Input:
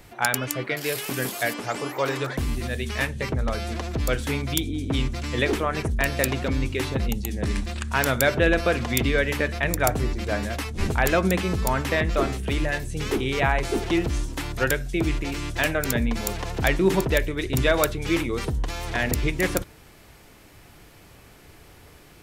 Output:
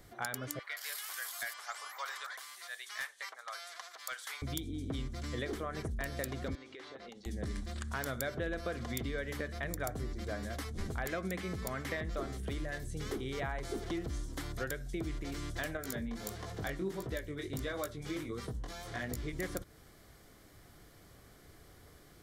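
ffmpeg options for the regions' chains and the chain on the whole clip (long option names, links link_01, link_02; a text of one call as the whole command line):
ffmpeg -i in.wav -filter_complex "[0:a]asettb=1/sr,asplit=3[link_01][link_02][link_03];[link_01]atrim=end=0.594[link_04];[link_02]atrim=start=0.59:end=4.42,asetpts=PTS-STARTPTS,afade=type=in:duration=0.004:curve=qsin,afade=type=out:start_time=3.826:duration=0.004:curve=qsin,highpass=frequency=910:width=0.5412,highpass=frequency=910:width=1.3066,asoftclip=type=hard:threshold=-18.5dB[link_05];[link_03]atrim=start=4.416[link_06];[link_04][link_05]acrossfade=duration=0.004:curve1=hsin:curve2=qsin[link_07];[link_07][link_06]acrossfade=duration=0.004:curve1=qsin:curve2=hsin,asettb=1/sr,asplit=3[link_08][link_09][link_10];[link_08]atrim=end=6.554[link_11];[link_09]atrim=start=6.55:end=7.26,asetpts=PTS-STARTPTS,afade=type=in:duration=0.004:curve=qsin,afade=type=out:start_time=0.706:duration=0.004:curve=qsin,highpass=470,lowpass=4200,acompressor=threshold=-35dB:ratio=12:attack=3.2:release=140:knee=1:detection=peak[link_12];[link_10]atrim=start=7.256[link_13];[link_11][link_12]acrossfade=duration=0.004:curve1=hsin:curve2=qsin[link_14];[link_14][link_13]acrossfade=duration=0.004:curve1=qsin:curve2=hsin,asettb=1/sr,asplit=3[link_15][link_16][link_17];[link_15]atrim=end=11.054[link_18];[link_16]atrim=start=11.05:end=11.97,asetpts=PTS-STARTPTS,afade=type=in:duration=0.004:curve=qsin,afade=type=out:start_time=0.916:duration=0.004:curve=qsin,highpass=71,equalizer=frequency=2200:width=2.4:gain=7[link_19];[link_17]atrim=start=11.966[link_20];[link_18][link_19]acrossfade=duration=0.004:curve1=hsin:curve2=qsin[link_21];[link_21][link_20]acrossfade=duration=0.004:curve1=qsin:curve2=hsin,asettb=1/sr,asplit=3[link_22][link_23][link_24];[link_22]atrim=end=15.774[link_25];[link_23]atrim=start=15.77:end=19.33,asetpts=PTS-STARTPTS,afade=type=in:duration=0.004:curve=qsin,afade=type=out:start_time=3.556:duration=0.004:curve=qsin,highpass=58,flanger=delay=16:depth=6.1:speed=1.5[link_26];[link_24]atrim=start=19.326[link_27];[link_25][link_26]acrossfade=duration=0.004:curve1=hsin:curve2=qsin[link_28];[link_28][link_27]acrossfade=duration=0.004:curve1=qsin:curve2=hsin,equalizer=frequency=2600:width_type=o:width=0.26:gain=-12.5,bandreject=frequency=900:width=7.5,acompressor=threshold=-28dB:ratio=3,volume=-8dB" out.wav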